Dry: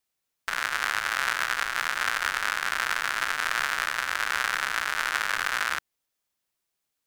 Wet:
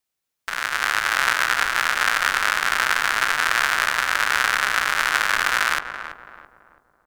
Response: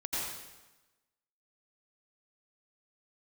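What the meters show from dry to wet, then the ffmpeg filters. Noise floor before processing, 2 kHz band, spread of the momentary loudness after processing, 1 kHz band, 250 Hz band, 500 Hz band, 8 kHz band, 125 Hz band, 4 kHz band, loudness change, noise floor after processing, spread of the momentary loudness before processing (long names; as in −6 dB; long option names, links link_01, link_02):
−82 dBFS, +7.0 dB, 7 LU, +7.0 dB, +7.5 dB, +7.5 dB, +6.5 dB, can't be measured, +6.5 dB, +7.0 dB, −81 dBFS, 2 LU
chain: -filter_complex "[0:a]dynaudnorm=framelen=110:gausssize=13:maxgain=11.5dB,asplit=2[link_01][link_02];[link_02]adelay=332,lowpass=frequency=1100:poles=1,volume=-7dB,asplit=2[link_03][link_04];[link_04]adelay=332,lowpass=frequency=1100:poles=1,volume=0.47,asplit=2[link_05][link_06];[link_06]adelay=332,lowpass=frequency=1100:poles=1,volume=0.47,asplit=2[link_07][link_08];[link_08]adelay=332,lowpass=frequency=1100:poles=1,volume=0.47,asplit=2[link_09][link_10];[link_10]adelay=332,lowpass=frequency=1100:poles=1,volume=0.47,asplit=2[link_11][link_12];[link_12]adelay=332,lowpass=frequency=1100:poles=1,volume=0.47[link_13];[link_01][link_03][link_05][link_07][link_09][link_11][link_13]amix=inputs=7:normalize=0"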